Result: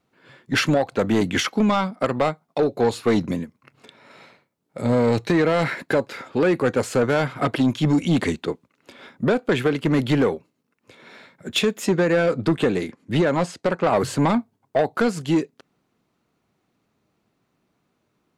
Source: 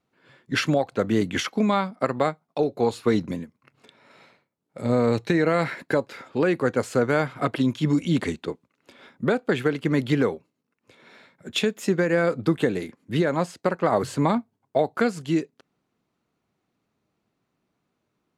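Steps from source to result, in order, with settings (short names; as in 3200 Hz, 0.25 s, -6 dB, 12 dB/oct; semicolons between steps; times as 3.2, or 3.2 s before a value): soft clip -17.5 dBFS, distortion -13 dB; 11.86–13.95 LPF 9800 Hz 12 dB/oct; gain +5.5 dB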